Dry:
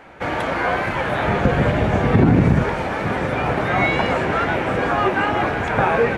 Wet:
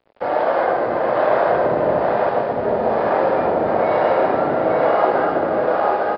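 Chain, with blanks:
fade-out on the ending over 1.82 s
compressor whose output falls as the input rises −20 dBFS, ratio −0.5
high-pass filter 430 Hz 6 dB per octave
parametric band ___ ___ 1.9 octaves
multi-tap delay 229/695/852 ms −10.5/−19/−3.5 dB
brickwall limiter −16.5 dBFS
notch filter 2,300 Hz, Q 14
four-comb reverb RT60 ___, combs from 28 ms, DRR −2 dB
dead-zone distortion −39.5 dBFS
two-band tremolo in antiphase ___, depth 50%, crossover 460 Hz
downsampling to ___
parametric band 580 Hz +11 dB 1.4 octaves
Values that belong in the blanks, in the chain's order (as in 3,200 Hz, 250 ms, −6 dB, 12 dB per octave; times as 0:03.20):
3,300 Hz, −12.5 dB, 3.4 s, 1.1 Hz, 11,025 Hz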